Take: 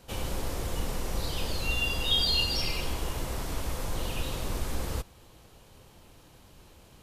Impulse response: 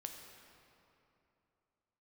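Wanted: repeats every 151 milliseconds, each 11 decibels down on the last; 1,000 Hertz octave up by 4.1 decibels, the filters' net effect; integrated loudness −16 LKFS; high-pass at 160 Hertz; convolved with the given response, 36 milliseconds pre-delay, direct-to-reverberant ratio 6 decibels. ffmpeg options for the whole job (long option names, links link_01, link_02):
-filter_complex "[0:a]highpass=160,equalizer=frequency=1000:width_type=o:gain=5,aecho=1:1:151|302|453:0.282|0.0789|0.0221,asplit=2[link_01][link_02];[1:a]atrim=start_sample=2205,adelay=36[link_03];[link_02][link_03]afir=irnorm=-1:irlink=0,volume=-3dB[link_04];[link_01][link_04]amix=inputs=2:normalize=0,volume=14dB"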